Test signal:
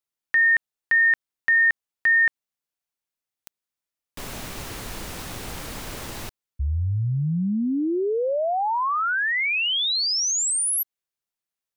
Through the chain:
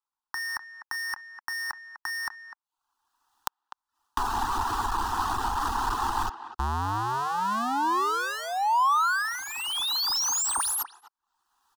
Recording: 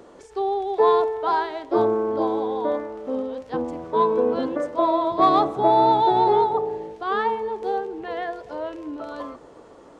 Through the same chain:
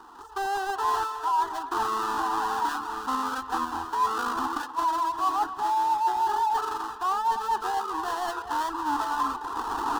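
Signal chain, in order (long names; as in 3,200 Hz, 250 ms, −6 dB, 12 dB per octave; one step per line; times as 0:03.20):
each half-wave held at its own peak
camcorder AGC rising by 23 dB per second
reverb reduction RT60 0.54 s
low-pass filter 1,900 Hz 6 dB per octave
low shelf with overshoot 670 Hz −9.5 dB, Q 3
reversed playback
downward compressor 6 to 1, threshold −22 dBFS
reversed playback
phaser with its sweep stopped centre 590 Hz, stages 6
far-end echo of a speakerphone 250 ms, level −12 dB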